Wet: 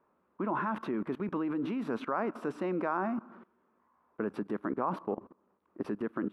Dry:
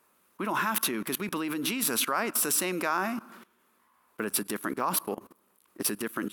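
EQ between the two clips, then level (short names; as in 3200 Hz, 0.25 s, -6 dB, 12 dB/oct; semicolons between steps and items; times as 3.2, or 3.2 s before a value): LPF 1000 Hz 12 dB/oct; 0.0 dB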